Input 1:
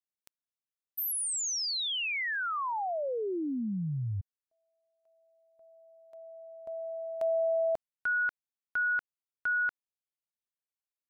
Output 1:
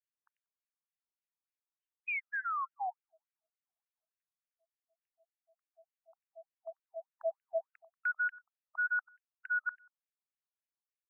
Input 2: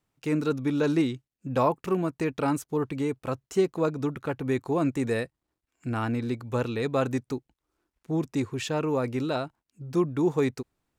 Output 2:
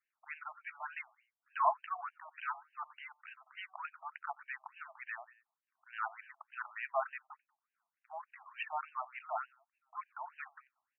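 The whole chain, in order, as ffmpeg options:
-af "aecho=1:1:93|186:0.0841|0.0269,afftfilt=real='re*between(b*sr/1024,880*pow(2200/880,0.5+0.5*sin(2*PI*3.4*pts/sr))/1.41,880*pow(2200/880,0.5+0.5*sin(2*PI*3.4*pts/sr))*1.41)':imag='im*between(b*sr/1024,880*pow(2200/880,0.5+0.5*sin(2*PI*3.4*pts/sr))/1.41,880*pow(2200/880,0.5+0.5*sin(2*PI*3.4*pts/sr))*1.41)':win_size=1024:overlap=0.75,volume=0.841"

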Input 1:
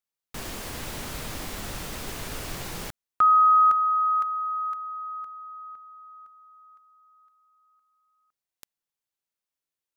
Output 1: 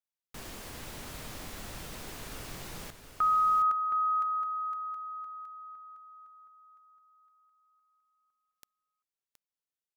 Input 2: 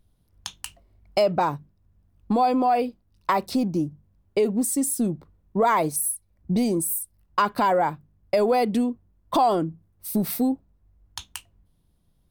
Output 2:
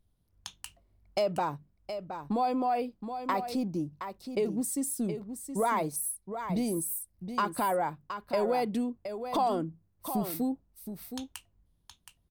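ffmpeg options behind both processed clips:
-af "aecho=1:1:720:0.355,volume=0.398"

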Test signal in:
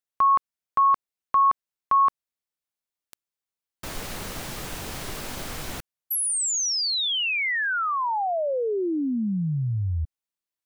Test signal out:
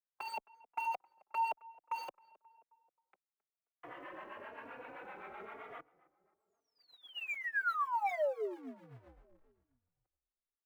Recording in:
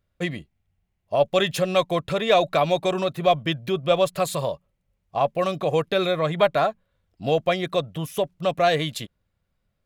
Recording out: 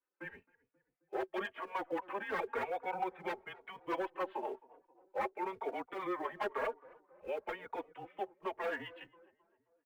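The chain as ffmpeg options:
-filter_complex "[0:a]afftfilt=real='re*pow(10,7/40*sin(2*PI*(1.5*log(max(b,1)*sr/1024/100)/log(2)-(-0.43)*(pts-256)/sr)))':imag='im*pow(10,7/40*sin(2*PI*(1.5*log(max(b,1)*sr/1024/100)/log(2)-(-0.43)*(pts-256)/sr)))':win_size=1024:overlap=0.75,highpass=f=350:t=q:w=0.5412,highpass=f=350:t=q:w=1.307,lowpass=f=3100:t=q:w=0.5176,lowpass=f=3100:t=q:w=0.7071,lowpass=f=3100:t=q:w=1.932,afreqshift=-190,adynamicequalizer=threshold=0.0158:dfrequency=740:dqfactor=2.4:tfrequency=740:tqfactor=2.4:attack=5:release=100:ratio=0.438:range=3:mode=boostabove:tftype=bell,acrossover=split=460[s0][s1];[s0]acompressor=threshold=0.02:ratio=12:attack=0.12:release=29:knee=6:detection=rms[s2];[s2][s1]amix=inputs=2:normalize=0,acrossover=split=600[s3][s4];[s3]aeval=exprs='val(0)*(1-0.7/2+0.7/2*cos(2*PI*7.7*n/s))':c=same[s5];[s4]aeval=exprs='val(0)*(1-0.7/2-0.7/2*cos(2*PI*7.7*n/s))':c=same[s6];[s5][s6]amix=inputs=2:normalize=0,acrusher=bits=4:mode=log:mix=0:aa=0.000001,aeval=exprs='0.0708*(abs(mod(val(0)/0.0708+3,4)-2)-1)':c=same,acrossover=split=330 2100:gain=0.178 1 0.1[s7][s8][s9];[s7][s8][s9]amix=inputs=3:normalize=0,asplit=2[s10][s11];[s11]adelay=266,lowpass=f=1400:p=1,volume=0.0891,asplit=2[s12][s13];[s13]adelay=266,lowpass=f=1400:p=1,volume=0.55,asplit=2[s14][s15];[s15]adelay=266,lowpass=f=1400:p=1,volume=0.55,asplit=2[s16][s17];[s17]adelay=266,lowpass=f=1400:p=1,volume=0.55[s18];[s12][s14][s16][s18]amix=inputs=4:normalize=0[s19];[s10][s19]amix=inputs=2:normalize=0,asplit=2[s20][s21];[s21]adelay=3.5,afreqshift=0.99[s22];[s20][s22]amix=inputs=2:normalize=1,volume=0.841"

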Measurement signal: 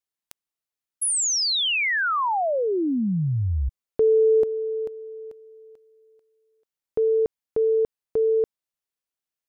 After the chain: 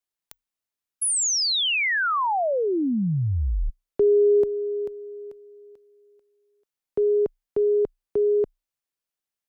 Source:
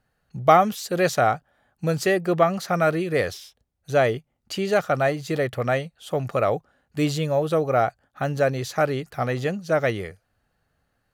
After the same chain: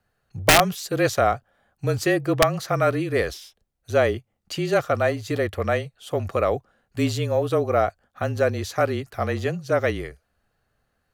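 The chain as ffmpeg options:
-af "afreqshift=-30,aeval=exprs='(mod(2.11*val(0)+1,2)-1)/2.11':c=same"

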